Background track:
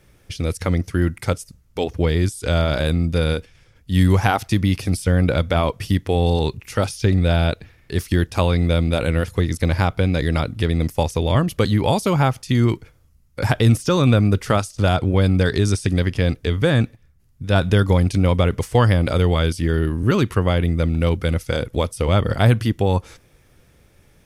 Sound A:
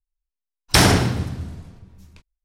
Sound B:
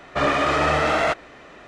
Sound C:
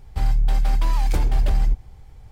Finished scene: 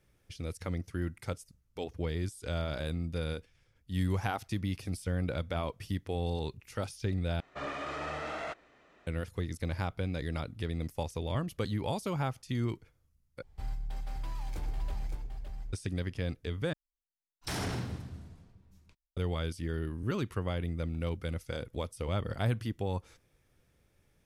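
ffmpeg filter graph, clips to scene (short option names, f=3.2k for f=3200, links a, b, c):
-filter_complex "[0:a]volume=-15.5dB[a];[3:a]aecho=1:1:122|564:0.224|0.501[b];[1:a]alimiter=limit=-12.5dB:level=0:latency=1:release=12[c];[a]asplit=4[d][e][f][g];[d]atrim=end=7.404[h];[2:a]atrim=end=1.67,asetpts=PTS-STARTPTS,volume=-18dB[i];[e]atrim=start=9.066:end=13.424[j];[b]atrim=end=2.31,asetpts=PTS-STARTPTS,volume=-17dB[k];[f]atrim=start=15.726:end=16.734[l];[c]atrim=end=2.44,asetpts=PTS-STARTPTS,volume=-14dB[m];[g]atrim=start=19.166[n];[h][i]acrossfade=d=0.004:c1=hsin:c2=hsin[o];[o][j]acrossfade=d=0.004:c1=hsin:c2=hsin[p];[p][k]acrossfade=d=0.004:c1=hsin:c2=hsin[q];[q][l]acrossfade=d=0.004:c1=hsin:c2=hsin[r];[r][m]acrossfade=d=0.004:c1=hsin:c2=hsin[s];[s][n]acrossfade=d=0.004:c1=hsin:c2=hsin"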